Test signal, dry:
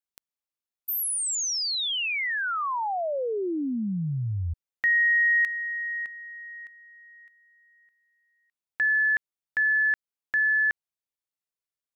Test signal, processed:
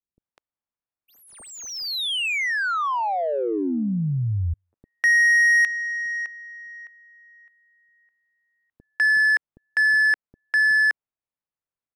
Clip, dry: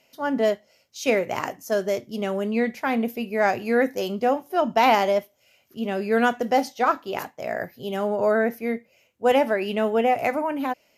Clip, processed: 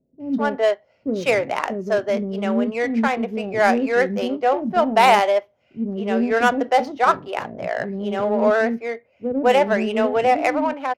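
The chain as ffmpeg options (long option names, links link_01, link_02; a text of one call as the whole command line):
ffmpeg -i in.wav -filter_complex "[0:a]acrossover=split=390[link_01][link_02];[link_02]adelay=200[link_03];[link_01][link_03]amix=inputs=2:normalize=0,adynamicsmooth=sensitivity=3:basefreq=1800,volume=5dB" out.wav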